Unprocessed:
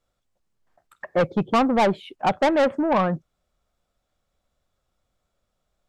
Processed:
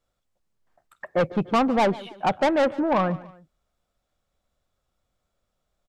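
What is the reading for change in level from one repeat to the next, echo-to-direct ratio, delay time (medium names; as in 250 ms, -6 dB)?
-7.5 dB, -18.5 dB, 146 ms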